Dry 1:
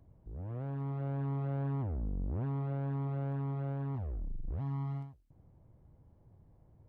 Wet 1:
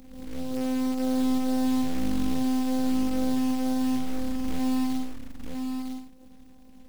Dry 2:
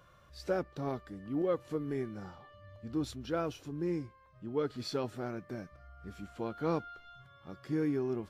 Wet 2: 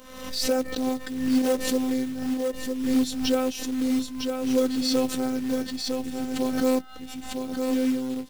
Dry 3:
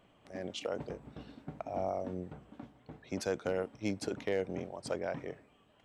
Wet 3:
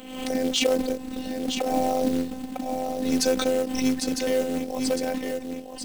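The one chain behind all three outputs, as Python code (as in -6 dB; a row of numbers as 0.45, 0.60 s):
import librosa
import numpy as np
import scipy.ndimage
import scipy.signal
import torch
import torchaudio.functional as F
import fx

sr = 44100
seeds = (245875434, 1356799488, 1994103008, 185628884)

p1 = np.clip(x, -10.0 ** (-25.5 / 20.0), 10.0 ** (-25.5 / 20.0))
p2 = fx.highpass(p1, sr, hz=150.0, slope=6)
p3 = fx.peak_eq(p2, sr, hz=1200.0, db=-12.5, octaves=2.1)
p4 = fx.rider(p3, sr, range_db=5, speed_s=2.0)
p5 = fx.robotise(p4, sr, hz=258.0)
p6 = fx.quant_float(p5, sr, bits=2)
p7 = p6 + fx.echo_single(p6, sr, ms=955, db=-5.5, dry=0)
p8 = fx.pre_swell(p7, sr, db_per_s=58.0)
y = p8 * 10.0 ** (-26 / 20.0) / np.sqrt(np.mean(np.square(p8)))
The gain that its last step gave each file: +19.5, +16.0, +18.0 dB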